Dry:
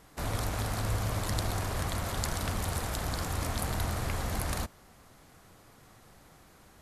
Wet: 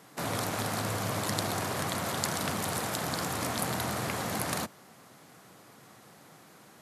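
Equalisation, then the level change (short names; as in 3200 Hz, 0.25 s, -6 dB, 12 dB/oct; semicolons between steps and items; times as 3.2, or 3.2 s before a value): HPF 130 Hz 24 dB/oct; +3.5 dB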